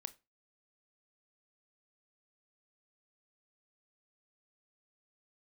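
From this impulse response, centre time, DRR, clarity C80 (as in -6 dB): 3 ms, 13.0 dB, 27.0 dB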